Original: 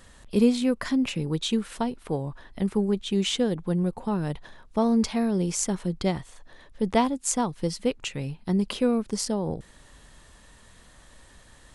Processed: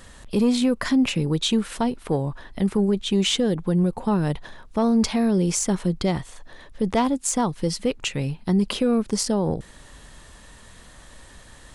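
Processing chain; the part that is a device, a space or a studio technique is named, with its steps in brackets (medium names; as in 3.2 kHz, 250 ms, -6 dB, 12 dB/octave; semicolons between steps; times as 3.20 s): soft clipper into limiter (saturation -13 dBFS, distortion -22 dB; peak limiter -19 dBFS, peak gain reduction 5 dB); trim +6 dB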